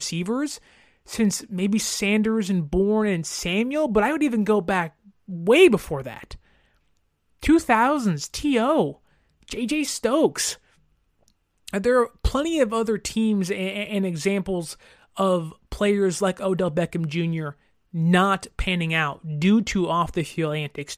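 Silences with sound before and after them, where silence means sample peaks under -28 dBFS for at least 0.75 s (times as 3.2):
6.34–7.43
10.53–11.68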